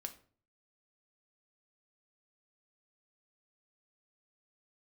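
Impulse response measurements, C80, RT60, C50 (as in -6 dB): 18.5 dB, 0.45 s, 14.0 dB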